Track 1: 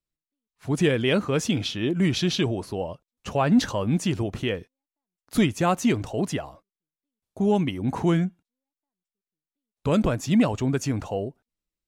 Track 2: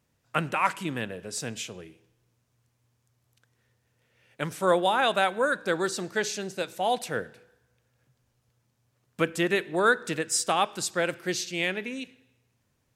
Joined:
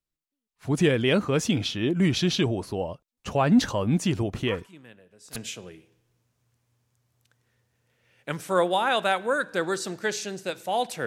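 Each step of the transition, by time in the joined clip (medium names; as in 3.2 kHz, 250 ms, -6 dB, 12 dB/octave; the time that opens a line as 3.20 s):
track 1
4.47 s: add track 2 from 0.59 s 0.89 s -17 dB
5.36 s: go over to track 2 from 1.48 s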